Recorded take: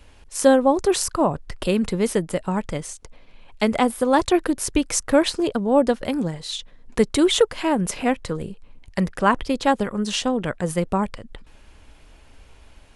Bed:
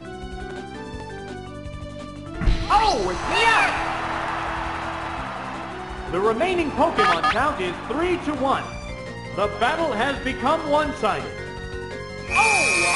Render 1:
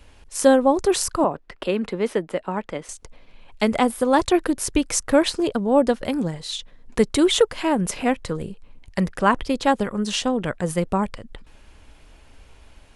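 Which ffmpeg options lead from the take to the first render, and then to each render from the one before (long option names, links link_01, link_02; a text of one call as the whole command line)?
ffmpeg -i in.wav -filter_complex "[0:a]asettb=1/sr,asplit=3[link_01][link_02][link_03];[link_01]atrim=end=1.244[link_04];[link_02]atrim=start=1.24:end=2.89,asetpts=PTS-STARTPTS,afade=type=in:duration=0.004:curve=qsin,afade=type=out:start_time=1.646:duration=0.004:curve=qsin,acrossover=split=220 3800:gain=0.178 1 0.2[link_05][link_06][link_07];[link_05][link_06][link_07]amix=inputs=3:normalize=0[link_08];[link_03]atrim=start=2.886[link_09];[link_04][link_08]acrossfade=duration=0.004:curve1=hsin:curve2=qsin[link_10];[link_10][link_09]acrossfade=duration=0.004:curve1=qsin:curve2=hsin" out.wav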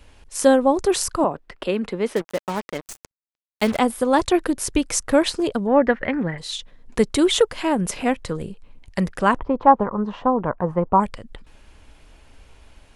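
ffmpeg -i in.wav -filter_complex "[0:a]asettb=1/sr,asplit=3[link_01][link_02][link_03];[link_01]atrim=end=2.164[link_04];[link_02]atrim=start=2.16:end=3.79,asetpts=PTS-STARTPTS,afade=type=in:duration=0.004:curve=qsin,afade=type=out:start_time=1.626:duration=0.004:curve=qsin,acrusher=bits=4:mix=0:aa=0.5[link_05];[link_03]atrim=start=3.786[link_06];[link_04][link_05]acrossfade=duration=0.004:curve1=hsin:curve2=qsin[link_07];[link_07][link_06]acrossfade=duration=0.004:curve1=qsin:curve2=hsin,asettb=1/sr,asplit=3[link_08][link_09][link_10];[link_08]atrim=end=5.674[link_11];[link_09]atrim=start=5.67:end=6.38,asetpts=PTS-STARTPTS,afade=type=in:duration=0.004:curve=qsin,afade=type=out:start_time=0.706:duration=0.004:curve=qsin,lowpass=frequency=1900:width_type=q:width=4.7[link_12];[link_10]atrim=start=6.376[link_13];[link_11][link_12]acrossfade=duration=0.004:curve1=hsin:curve2=qsin[link_14];[link_14][link_13]acrossfade=duration=0.004:curve1=qsin:curve2=hsin,asettb=1/sr,asplit=3[link_15][link_16][link_17];[link_15]atrim=end=9.374[link_18];[link_16]atrim=start=9.37:end=11,asetpts=PTS-STARTPTS,afade=type=in:duration=0.004:curve=qsin,afade=type=out:start_time=1.626:duration=0.004:curve=qsin,lowpass=frequency=1000:width_type=q:width=3.9[link_19];[link_17]atrim=start=10.996[link_20];[link_18][link_19]acrossfade=duration=0.004:curve1=hsin:curve2=qsin[link_21];[link_21][link_20]acrossfade=duration=0.004:curve1=qsin:curve2=hsin" out.wav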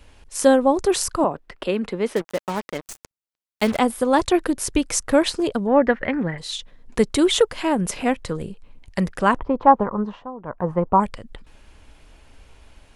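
ffmpeg -i in.wav -filter_complex "[0:a]asplit=3[link_01][link_02][link_03];[link_01]atrim=end=10.26,asetpts=PTS-STARTPTS,afade=type=out:start_time=10.01:duration=0.25:silence=0.177828[link_04];[link_02]atrim=start=10.26:end=10.42,asetpts=PTS-STARTPTS,volume=-15dB[link_05];[link_03]atrim=start=10.42,asetpts=PTS-STARTPTS,afade=type=in:duration=0.25:silence=0.177828[link_06];[link_04][link_05][link_06]concat=n=3:v=0:a=1" out.wav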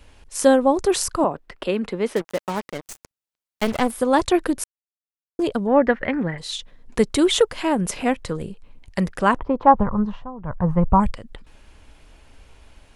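ffmpeg -i in.wav -filter_complex "[0:a]asplit=3[link_01][link_02][link_03];[link_01]afade=type=out:start_time=2.61:duration=0.02[link_04];[link_02]aeval=exprs='clip(val(0),-1,0.0376)':channel_layout=same,afade=type=in:start_time=2.61:duration=0.02,afade=type=out:start_time=3.9:duration=0.02[link_05];[link_03]afade=type=in:start_time=3.9:duration=0.02[link_06];[link_04][link_05][link_06]amix=inputs=3:normalize=0,asplit=3[link_07][link_08][link_09];[link_07]afade=type=out:start_time=9.73:duration=0.02[link_10];[link_08]asubboost=boost=8:cutoff=120,afade=type=in:start_time=9.73:duration=0.02,afade=type=out:start_time=11.1:duration=0.02[link_11];[link_09]afade=type=in:start_time=11.1:duration=0.02[link_12];[link_10][link_11][link_12]amix=inputs=3:normalize=0,asplit=3[link_13][link_14][link_15];[link_13]atrim=end=4.64,asetpts=PTS-STARTPTS,afade=type=out:start_time=4.636:duration=0.004:curve=hsin[link_16];[link_14]atrim=start=4.64:end=5.39,asetpts=PTS-STARTPTS,volume=0[link_17];[link_15]atrim=start=5.39,asetpts=PTS-STARTPTS,afade=type=in:duration=0.004:curve=hsin[link_18];[link_16][link_17][link_18]concat=n=3:v=0:a=1" out.wav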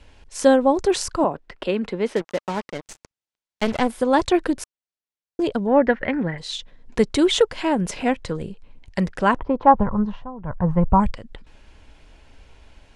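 ffmpeg -i in.wav -af "lowpass=7100,bandreject=frequency=1200:width=12" out.wav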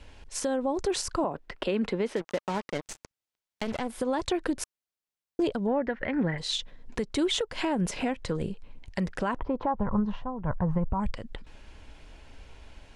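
ffmpeg -i in.wav -af "acompressor=threshold=-20dB:ratio=6,alimiter=limit=-18.5dB:level=0:latency=1:release=148" out.wav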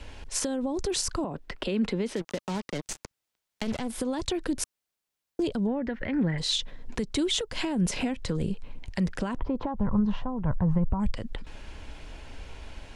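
ffmpeg -i in.wav -filter_complex "[0:a]asplit=2[link_01][link_02];[link_02]alimiter=level_in=4dB:limit=-24dB:level=0:latency=1:release=41,volume=-4dB,volume=1dB[link_03];[link_01][link_03]amix=inputs=2:normalize=0,acrossover=split=310|3000[link_04][link_05][link_06];[link_05]acompressor=threshold=-38dB:ratio=2.5[link_07];[link_04][link_07][link_06]amix=inputs=3:normalize=0" out.wav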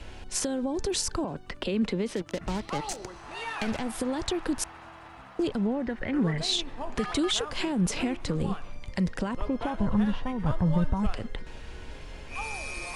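ffmpeg -i in.wav -i bed.wav -filter_complex "[1:a]volume=-18.5dB[link_01];[0:a][link_01]amix=inputs=2:normalize=0" out.wav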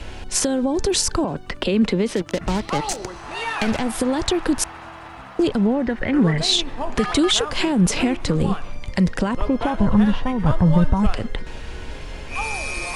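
ffmpeg -i in.wav -af "volume=9dB" out.wav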